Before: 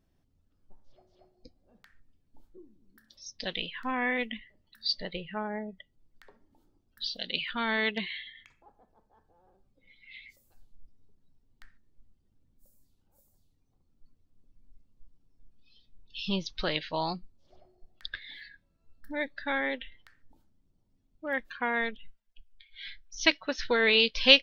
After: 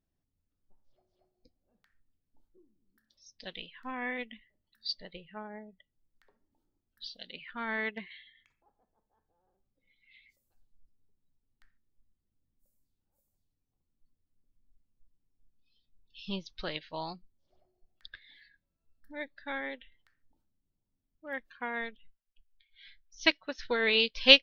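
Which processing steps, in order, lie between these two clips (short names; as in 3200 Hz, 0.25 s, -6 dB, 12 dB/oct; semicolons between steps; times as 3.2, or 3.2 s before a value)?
7.33–8.11 resonant high shelf 2600 Hz -7.5 dB, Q 1.5; upward expander 1.5:1, over -40 dBFS; gain +1 dB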